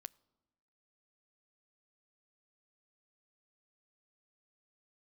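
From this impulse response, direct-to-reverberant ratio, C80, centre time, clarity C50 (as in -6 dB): 20.0 dB, 27.5 dB, 2 ms, 26.0 dB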